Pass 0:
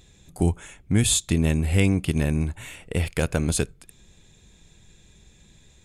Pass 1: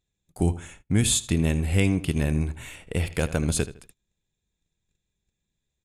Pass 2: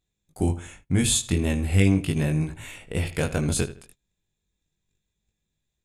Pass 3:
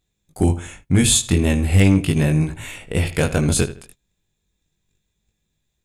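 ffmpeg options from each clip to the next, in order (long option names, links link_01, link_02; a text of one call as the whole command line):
ffmpeg -i in.wav -filter_complex "[0:a]asplit=2[link_01][link_02];[link_02]adelay=79,lowpass=frequency=4300:poles=1,volume=-14.5dB,asplit=2[link_03][link_04];[link_04]adelay=79,lowpass=frequency=4300:poles=1,volume=0.29,asplit=2[link_05][link_06];[link_06]adelay=79,lowpass=frequency=4300:poles=1,volume=0.29[link_07];[link_01][link_03][link_05][link_07]amix=inputs=4:normalize=0,agate=range=-26dB:threshold=-46dB:ratio=16:detection=peak,volume=-1.5dB" out.wav
ffmpeg -i in.wav -af "flanger=delay=19:depth=2.9:speed=0.38,volume=3.5dB" out.wav
ffmpeg -i in.wav -af "asoftclip=type=hard:threshold=-12.5dB,volume=6.5dB" out.wav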